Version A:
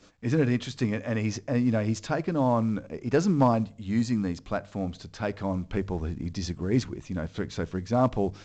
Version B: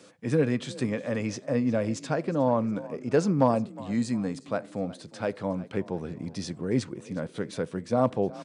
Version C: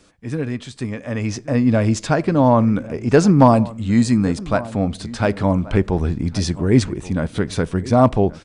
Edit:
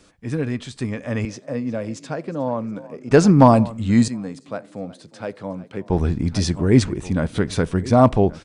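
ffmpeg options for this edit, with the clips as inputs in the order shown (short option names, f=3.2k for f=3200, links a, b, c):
-filter_complex "[1:a]asplit=2[a][b];[2:a]asplit=3[c][d][e];[c]atrim=end=1.252[f];[a]atrim=start=1.248:end=3.112[g];[d]atrim=start=3.108:end=4.082[h];[b]atrim=start=4.078:end=5.902[i];[e]atrim=start=5.898[j];[f][g]acrossfade=d=0.004:c1=hsin:c2=hsin[k];[k][h]acrossfade=d=0.004:c1=hsin:c2=hsin[l];[l][i]acrossfade=d=0.004:c1=hsin:c2=hsin[m];[m][j]acrossfade=d=0.004:c1=hsin:c2=hsin"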